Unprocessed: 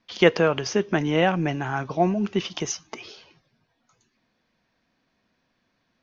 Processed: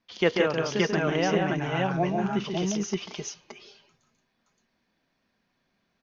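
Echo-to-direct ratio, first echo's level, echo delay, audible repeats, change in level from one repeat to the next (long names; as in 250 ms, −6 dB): 2.0 dB, −4.5 dB, 140 ms, 3, repeats not evenly spaced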